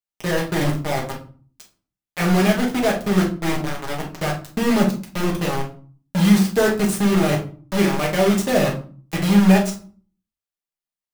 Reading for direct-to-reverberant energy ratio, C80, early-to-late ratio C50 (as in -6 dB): -2.0 dB, 14.5 dB, 9.0 dB